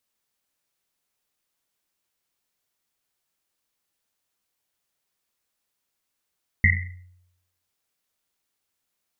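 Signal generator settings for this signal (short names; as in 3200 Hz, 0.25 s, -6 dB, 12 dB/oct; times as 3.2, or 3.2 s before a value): Risset drum, pitch 90 Hz, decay 0.83 s, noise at 2000 Hz, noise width 210 Hz, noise 50%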